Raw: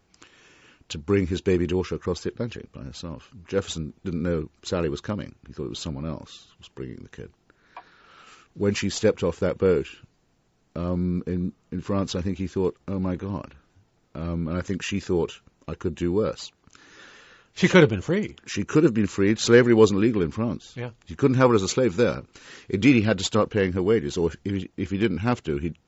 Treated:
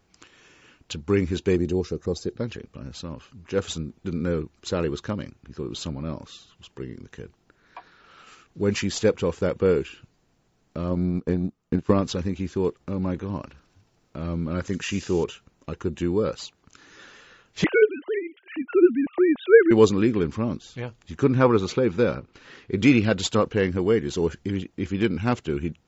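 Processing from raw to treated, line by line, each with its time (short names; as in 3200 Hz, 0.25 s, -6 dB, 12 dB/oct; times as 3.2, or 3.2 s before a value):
1.56–2.36 spectral gain 830–3600 Hz -10 dB
10.91–12.02 transient shaper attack +10 dB, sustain -11 dB
13.27–15.24 thin delay 72 ms, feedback 81%, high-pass 5300 Hz, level -6.5 dB
17.64–19.71 sine-wave speech
21.24–22.78 air absorption 150 m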